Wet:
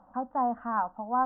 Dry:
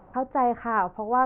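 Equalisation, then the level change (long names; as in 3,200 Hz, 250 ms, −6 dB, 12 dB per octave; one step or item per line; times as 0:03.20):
high-frequency loss of the air 100 metres
low shelf with overshoot 180 Hz −8.5 dB, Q 3
phaser with its sweep stopped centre 950 Hz, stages 4
−3.5 dB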